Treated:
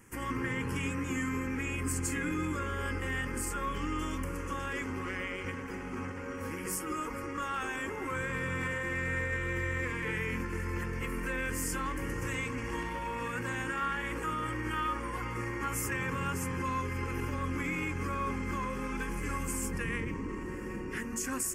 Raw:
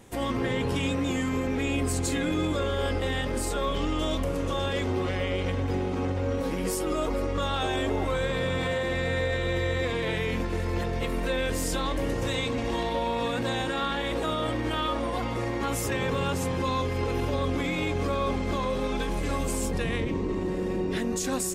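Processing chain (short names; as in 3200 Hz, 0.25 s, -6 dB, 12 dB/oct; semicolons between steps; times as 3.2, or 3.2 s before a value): low shelf 370 Hz -5.5 dB; fixed phaser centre 1600 Hz, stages 4; de-hum 46.3 Hz, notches 11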